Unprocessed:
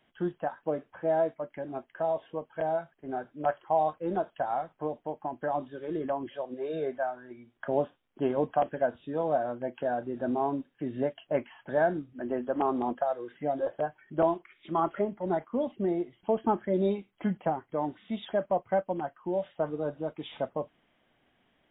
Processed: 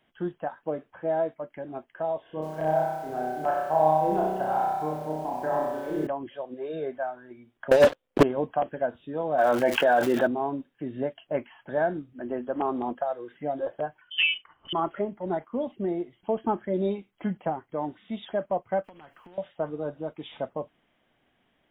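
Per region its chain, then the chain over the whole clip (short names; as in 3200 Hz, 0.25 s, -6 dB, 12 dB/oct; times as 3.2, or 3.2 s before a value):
2.22–6.07 high shelf 3300 Hz -6.5 dB + flutter echo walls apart 5.5 m, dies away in 1.2 s + lo-fi delay 91 ms, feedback 35%, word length 8-bit, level -7 dB
7.71–8.23 bell 520 Hz +14.5 dB 0.45 oct + negative-ratio compressor -25 dBFS, ratio -0.5 + sample leveller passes 5
9.37–10.26 HPF 1100 Hz 6 dB/oct + crackle 340/s -54 dBFS + fast leveller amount 70%
14.01–14.73 resonant high-pass 150 Hz, resonance Q 1.5 + inverted band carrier 3300 Hz
18.84–19.38 compressor 5:1, threshold -42 dBFS + spectral compressor 2:1
whole clip: dry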